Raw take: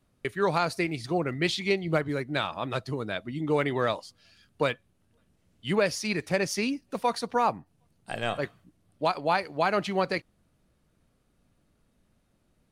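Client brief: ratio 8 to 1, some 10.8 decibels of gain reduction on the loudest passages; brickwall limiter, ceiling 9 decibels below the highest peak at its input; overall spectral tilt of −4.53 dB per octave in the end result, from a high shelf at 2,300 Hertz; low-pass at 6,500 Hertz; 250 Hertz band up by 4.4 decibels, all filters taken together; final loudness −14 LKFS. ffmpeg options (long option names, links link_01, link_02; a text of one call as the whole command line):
ffmpeg -i in.wav -af "lowpass=6500,equalizer=frequency=250:width_type=o:gain=6,highshelf=frequency=2300:gain=8,acompressor=threshold=-29dB:ratio=8,volume=22dB,alimiter=limit=-2.5dB:level=0:latency=1" out.wav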